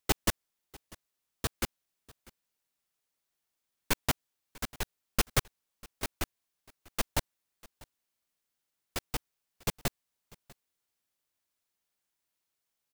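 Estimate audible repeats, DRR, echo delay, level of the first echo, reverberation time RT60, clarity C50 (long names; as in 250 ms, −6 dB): 1, no reverb audible, 645 ms, −23.5 dB, no reverb audible, no reverb audible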